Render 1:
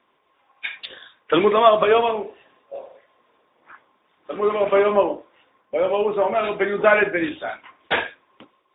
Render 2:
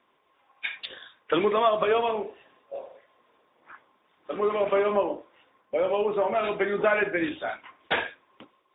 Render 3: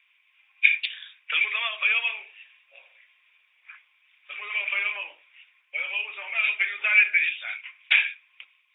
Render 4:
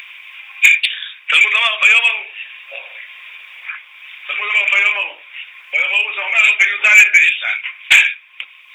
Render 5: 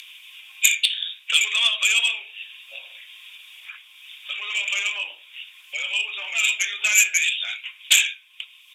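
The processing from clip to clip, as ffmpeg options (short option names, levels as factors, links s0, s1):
-af "acompressor=threshold=0.1:ratio=2,volume=0.75"
-af "highpass=f=2400:t=q:w=7.6"
-filter_complex "[0:a]asplit=2[s0][s1];[s1]acompressor=mode=upward:threshold=0.0447:ratio=2.5,volume=0.794[s2];[s0][s2]amix=inputs=2:normalize=0,asoftclip=type=tanh:threshold=0.299,volume=2.82"
-af "aexciter=amount=11.6:drive=2.3:freq=3100,flanger=delay=6.3:depth=3.5:regen=-83:speed=0.52:shape=triangular,aresample=32000,aresample=44100,volume=0.299"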